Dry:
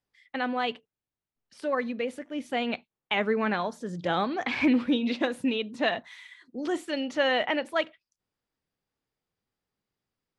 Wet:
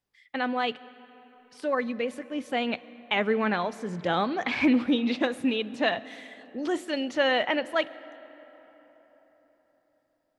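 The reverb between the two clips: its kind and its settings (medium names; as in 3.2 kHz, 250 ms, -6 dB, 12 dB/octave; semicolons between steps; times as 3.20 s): algorithmic reverb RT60 4.5 s, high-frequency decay 0.5×, pre-delay 70 ms, DRR 18.5 dB; trim +1 dB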